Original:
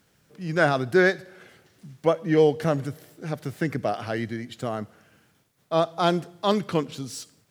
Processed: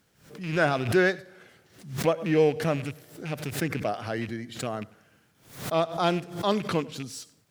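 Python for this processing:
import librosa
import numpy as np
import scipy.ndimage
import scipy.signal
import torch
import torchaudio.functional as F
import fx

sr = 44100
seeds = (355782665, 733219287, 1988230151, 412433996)

p1 = fx.rattle_buzz(x, sr, strikes_db=-31.0, level_db=-26.0)
p2 = p1 + fx.echo_single(p1, sr, ms=97, db=-22.5, dry=0)
p3 = fx.pre_swell(p2, sr, db_per_s=110.0)
y = p3 * librosa.db_to_amplitude(-3.0)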